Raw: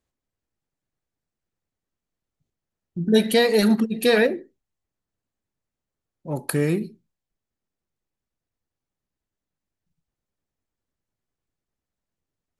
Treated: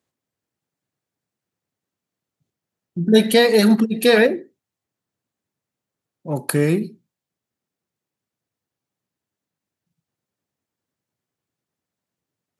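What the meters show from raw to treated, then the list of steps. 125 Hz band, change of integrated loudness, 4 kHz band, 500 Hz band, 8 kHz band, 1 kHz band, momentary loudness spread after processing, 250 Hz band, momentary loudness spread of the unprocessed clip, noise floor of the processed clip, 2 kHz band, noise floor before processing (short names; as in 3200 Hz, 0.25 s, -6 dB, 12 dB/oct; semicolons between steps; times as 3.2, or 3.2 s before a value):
+4.0 dB, +4.0 dB, +4.0 dB, +4.0 dB, +4.0 dB, +4.0 dB, 16 LU, +4.0 dB, 16 LU, under -85 dBFS, +4.0 dB, under -85 dBFS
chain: HPF 100 Hz 24 dB/oct; gain +4 dB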